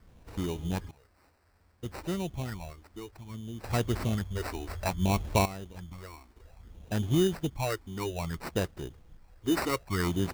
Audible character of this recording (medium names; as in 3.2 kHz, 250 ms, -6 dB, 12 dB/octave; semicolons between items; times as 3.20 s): random-step tremolo 1.1 Hz, depth 95%; a quantiser's noise floor 12-bit, dither triangular; phasing stages 6, 0.6 Hz, lowest notch 140–4300 Hz; aliases and images of a low sample rate 3.3 kHz, jitter 0%